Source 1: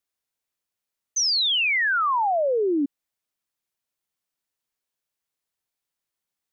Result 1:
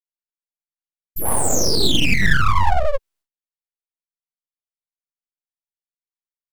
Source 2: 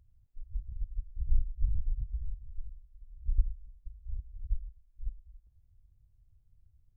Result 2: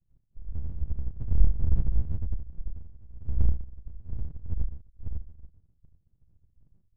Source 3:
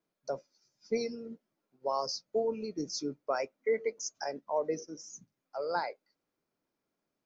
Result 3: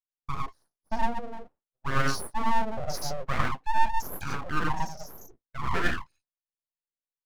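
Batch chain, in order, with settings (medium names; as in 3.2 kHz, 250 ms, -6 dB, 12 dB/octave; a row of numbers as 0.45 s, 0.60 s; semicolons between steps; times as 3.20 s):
treble shelf 3.9 kHz -5 dB; spectral gate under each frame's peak -15 dB strong; gated-style reverb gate 130 ms rising, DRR -3.5 dB; full-wave rectifier; expander -51 dBFS; trim +4 dB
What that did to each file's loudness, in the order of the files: +2.5 LU, +6.0 LU, +4.0 LU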